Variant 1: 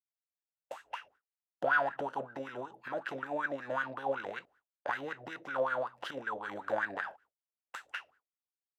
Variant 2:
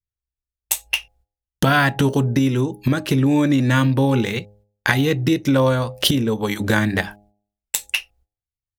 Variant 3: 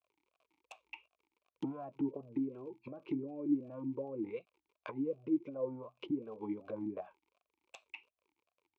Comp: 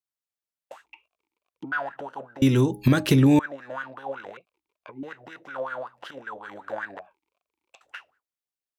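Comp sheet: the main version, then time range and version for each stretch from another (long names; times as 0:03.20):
1
0:00.86–0:01.72: punch in from 3
0:02.42–0:03.39: punch in from 2
0:04.37–0:05.03: punch in from 3
0:06.99–0:07.81: punch in from 3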